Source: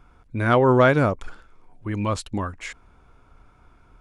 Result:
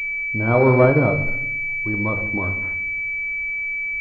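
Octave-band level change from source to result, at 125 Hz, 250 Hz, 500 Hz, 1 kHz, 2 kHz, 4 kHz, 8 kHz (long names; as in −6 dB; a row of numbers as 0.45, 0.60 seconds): +3.5 dB, +2.0 dB, +2.0 dB, −2.0 dB, +10.0 dB, below −10 dB, below −15 dB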